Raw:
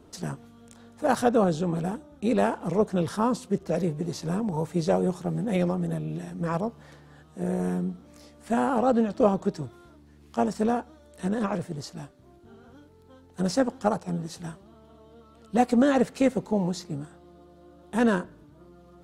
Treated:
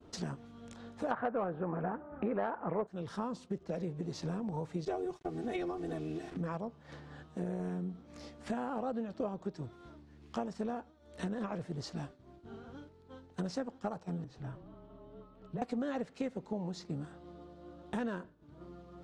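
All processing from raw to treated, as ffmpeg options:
-filter_complex "[0:a]asettb=1/sr,asplit=3[s0][s1][s2];[s0]atrim=end=1.114[s3];[s1]atrim=start=1.11:end=2.87,asetpts=PTS-STARTPTS,afade=t=in:d=0.004:c=qsin,afade=t=out:st=1.756:d=0.004:c=qsin,lowpass=f=1800:w=0.5412,lowpass=f=1800:w=1.3066,equalizer=f=1400:w=0.33:g=12.5,acontrast=22[s4];[s2]atrim=start=2.866[s5];[s3][s4]acrossfade=d=0.004:c1=hsin:c2=qsin[s6];[s6][s5]acrossfade=d=0.004:c1=qsin:c2=hsin,asettb=1/sr,asplit=3[s7][s8][s9];[s7]atrim=end=4.854[s10];[s8]atrim=start=4.85:end=6.37,asetpts=PTS-STARTPTS,afade=t=in:d=0.004:c=qsin,afade=t=out:st=1.516:d=0.004:c=qsin,agate=range=0.0224:threshold=0.0224:ratio=3:release=100:detection=peak,aecho=1:1:2.7:0.99,atrim=end_sample=67032,acrusher=bits=7:mix=0:aa=0.5[s11];[s9]atrim=start=6.366[s12];[s10][s11]acrossfade=d=0.004:c1=hsin:c2=qsin[s13];[s13][s12]acrossfade=d=0.004:c1=qsin:c2=hsin,asettb=1/sr,asplit=3[s14][s15][s16];[s14]atrim=end=14.244[s17];[s15]atrim=start=14.24:end=15.62,asetpts=PTS-STARTPTS,afade=t=in:d=0.004:c=qsin,afade=t=out:st=1.376:d=0.004:c=qsin,lowpass=f=1400:p=1,afreqshift=-33,acompressor=threshold=0.00447:ratio=2:attack=3.2:release=140:knee=1:detection=peak[s18];[s16]atrim=start=15.616[s19];[s17][s18]acrossfade=d=0.004:c1=hsin:c2=qsin[s20];[s20][s19]acrossfade=d=0.004:c1=qsin:c2=hsin,acompressor=threshold=0.0112:ratio=5,lowpass=5400,agate=range=0.0224:threshold=0.00398:ratio=3:detection=peak,volume=1.41"

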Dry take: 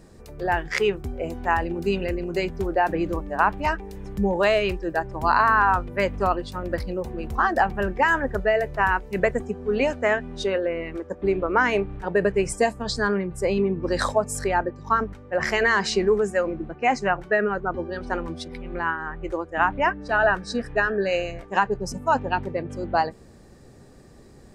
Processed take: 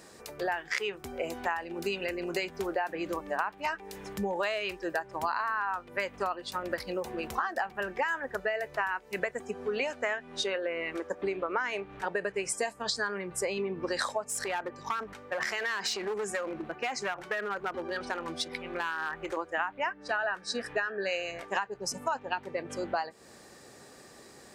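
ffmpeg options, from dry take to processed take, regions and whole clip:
-filter_complex "[0:a]asettb=1/sr,asplit=3[s0][s1][s2];[s0]atrim=end=14.224[s3];[s1]atrim=start=14.22:end=19.37,asetpts=PTS-STARTPTS,afade=t=in:d=0.004:c=qsin,afade=t=out:st=5.146:d=0.004:c=qsin,acompressor=threshold=0.0398:ratio=2.5:attack=3.2:release=140:knee=1:detection=peak,aeval=exprs='clip(val(0),-1,0.0473)':c=same[s4];[s2]atrim=start=19.366[s5];[s3][s4]acrossfade=d=0.004:c1=hsin:c2=qsin[s6];[s6][s5]acrossfade=d=0.004:c1=qsin:c2=hsin,highpass=f=1100:p=1,acompressor=threshold=0.0158:ratio=6,volume=2.24"

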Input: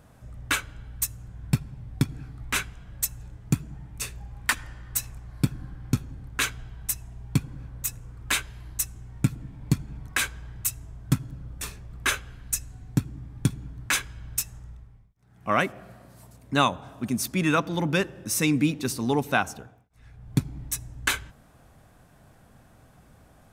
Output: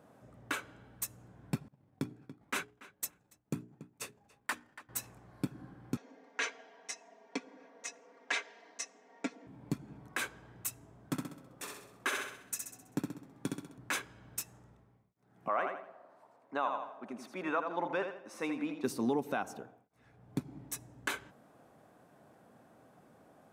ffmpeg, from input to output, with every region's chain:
-filter_complex "[0:a]asettb=1/sr,asplit=3[s0][s1][s2];[s0]atrim=end=1.684[s3];[s1]atrim=start=1.68:end=4.89,asetpts=PTS-STARTPTS,afade=t=in:d=0.004:c=qsin,afade=t=out:st=3.206:d=0.004:c=qsin,agate=range=0.0224:threshold=0.0282:ratio=3:release=100:detection=peak,bandreject=f=60:t=h:w=6,bandreject=f=120:t=h:w=6,bandreject=f=180:t=h:w=6,bandreject=f=240:t=h:w=6,bandreject=f=300:t=h:w=6,bandreject=f=360:t=h:w=6,bandreject=f=420:t=h:w=6,asplit=2[s4][s5];[s5]adelay=284,lowpass=f=3700:p=1,volume=0.106,asplit=2[s6][s7];[s7]adelay=284,lowpass=f=3700:p=1,volume=0.17[s8];[s4][s6][s8]amix=inputs=3:normalize=0,atrim=end_sample=141561[s9];[s2]atrim=start=4.886[s10];[s3][s9]acrossfade=d=0.004:c1=hsin:c2=qsin[s11];[s11][s10]acrossfade=d=0.004:c1=qsin:c2=hsin,asettb=1/sr,asplit=3[s12][s13][s14];[s12]atrim=end=5.974[s15];[s13]atrim=start=5.97:end=9.47,asetpts=PTS-STARTPTS,afade=t=in:d=0.004:c=qsin,afade=t=out:st=3.496:d=0.004:c=qsin,highpass=f=330:w=0.5412,highpass=f=330:w=1.3066,equalizer=f=350:t=q:w=4:g=-5,equalizer=f=610:t=q:w=4:g=5,equalizer=f=1300:t=q:w=4:g=-5,equalizer=f=2000:t=q:w=4:g=7,equalizer=f=5800:t=q:w=4:g=6,lowpass=f=6500:w=0.5412,lowpass=f=6500:w=1.3066,aecho=1:1:4.3:0.89,atrim=end_sample=154350[s16];[s14]atrim=start=9.466[s17];[s15][s16]acrossfade=d=0.004:c1=hsin:c2=qsin[s18];[s18][s17]acrossfade=d=0.004:c1=qsin:c2=hsin,asettb=1/sr,asplit=3[s19][s20][s21];[s19]atrim=end=11.084[s22];[s20]atrim=start=11.08:end=13.78,asetpts=PTS-STARTPTS,afade=t=in:d=0.004:c=qsin,afade=t=out:st=2.696:d=0.004:c=qsin,highpass=f=300:p=1,aecho=1:1:65|130|195|260|325|390:0.596|0.286|0.137|0.0659|0.0316|0.0152,atrim=end_sample=119070[s23];[s21]atrim=start=13.776[s24];[s22][s23]acrossfade=d=0.004:c1=hsin:c2=qsin[s25];[s25][s24]acrossfade=d=0.004:c1=qsin:c2=hsin,asettb=1/sr,asplit=3[s26][s27][s28];[s26]atrim=end=15.484[s29];[s27]atrim=start=15.48:end=18.84,asetpts=PTS-STARTPTS,afade=t=in:d=0.004:c=qsin,afade=t=out:st=3.356:d=0.004:c=qsin,bandpass=f=850:t=q:w=1.1,tiltshelf=f=740:g=-4,aecho=1:1:82|164|246|328:0.398|0.131|0.0434|0.0143,atrim=end_sample=148176[s30];[s28]atrim=start=18.836[s31];[s29][s30]acrossfade=d=0.004:c1=hsin:c2=qsin[s32];[s32][s31]acrossfade=d=0.004:c1=qsin:c2=hsin,highpass=290,tiltshelf=f=1200:g=6.5,alimiter=limit=0.141:level=0:latency=1:release=145,volume=0.596"

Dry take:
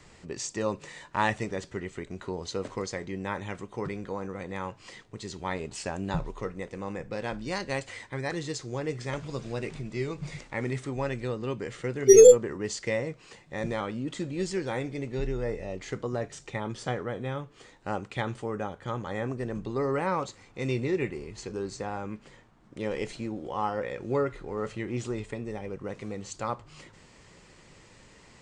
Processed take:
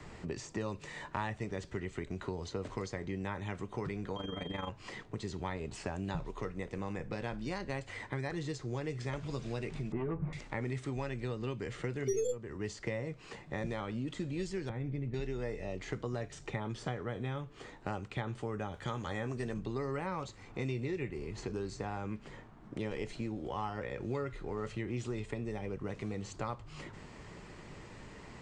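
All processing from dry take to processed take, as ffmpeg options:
-filter_complex "[0:a]asettb=1/sr,asplit=3[s0][s1][s2];[s0]atrim=end=4.164[s3];[s1]atrim=start=4.16:end=4.69,asetpts=PTS-STARTPTS,afade=t=in:d=0.004:c=qsin,afade=t=out:st=0.526:d=0.004:c=qsin,aecho=1:1:6.9:0.92,atrim=end_sample=23373,tremolo=f=23:d=0.75,aeval=exprs='val(0)+0.00708*sin(2*PI*3200*n/s)':c=same[s4];[s2]atrim=start=4.686[s5];[s3][s4]acrossfade=d=0.004:c1=hsin:c2=qsin[s6];[s6][s5]acrossfade=d=0.004:c1=qsin:c2=hsin,asettb=1/sr,asplit=3[s7][s8][s9];[s7]atrim=end=9.924[s10];[s8]atrim=start=9.92:end=10.33,asetpts=PTS-STARTPTS,afade=t=in:d=0.004:c=qsin,afade=t=out:st=0.406:d=0.004:c=qsin,lowpass=f=1300:w=0.5412,lowpass=f=1300:w=1.3066,aeval=exprs='0.0891*sin(PI/2*1.58*val(0)/0.0891)':c=same,asplit=2[s11][s12];[s12]adelay=12,volume=0.562[s13];[s11][s13]amix=inputs=2:normalize=0,atrim=end_sample=18081[s14];[s9]atrim=start=10.326[s15];[s10][s14]acrossfade=d=0.004:c1=hsin:c2=qsin[s16];[s16][s15]acrossfade=d=0.004:c1=qsin:c2=hsin,asettb=1/sr,asplit=3[s17][s18][s19];[s17]atrim=end=14.694[s20];[s18]atrim=start=14.69:end=15.14,asetpts=PTS-STARTPTS,afade=t=in:d=0.004:c=qsin,afade=t=out:st=0.446:d=0.004:c=qsin,agate=range=0.0224:threshold=0.02:ratio=3:release=100:detection=peak,acompressor=threshold=0.0141:ratio=12:attack=3.2:release=140:knee=1:detection=peak,bass=f=250:g=13,treble=f=4000:g=-14[s21];[s19]atrim=start=15.136[s22];[s20][s21]acrossfade=d=0.004:c1=hsin:c2=qsin[s23];[s23][s22]acrossfade=d=0.004:c1=qsin:c2=hsin,asettb=1/sr,asplit=3[s24][s25][s26];[s24]atrim=end=18.744[s27];[s25]atrim=start=18.74:end=19.54,asetpts=PTS-STARTPTS,afade=t=in:d=0.004:c=qsin,afade=t=out:st=0.796:d=0.004:c=qsin,highshelf=f=2500:g=10.5,asplit=2[s28][s29];[s29]adelay=13,volume=0.251[s30];[s28][s30]amix=inputs=2:normalize=0,atrim=end_sample=35280[s31];[s26]atrim=start=19.536[s32];[s27][s31]acrossfade=d=0.004:c1=hsin:c2=qsin[s33];[s33][s32]acrossfade=d=0.004:c1=qsin:c2=hsin,highshelf=f=2900:g=-11.5,bandreject=f=520:w=12,acrossover=split=100|2300[s34][s35][s36];[s34]acompressor=threshold=0.00282:ratio=4[s37];[s35]acompressor=threshold=0.00631:ratio=4[s38];[s36]acompressor=threshold=0.00178:ratio=4[s39];[s37][s38][s39]amix=inputs=3:normalize=0,volume=2"

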